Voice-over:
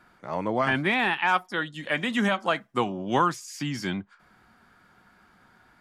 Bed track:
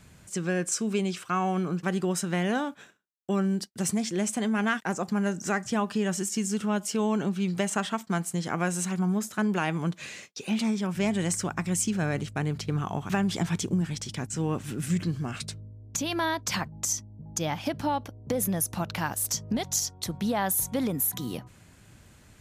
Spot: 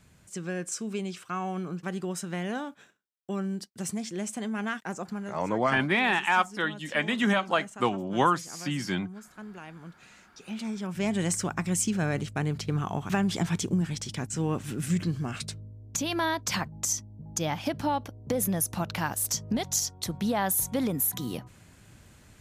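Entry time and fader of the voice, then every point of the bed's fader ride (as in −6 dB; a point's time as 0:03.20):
5.05 s, −0.5 dB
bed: 0:05.07 −5.5 dB
0:05.46 −16.5 dB
0:09.97 −16.5 dB
0:11.20 0 dB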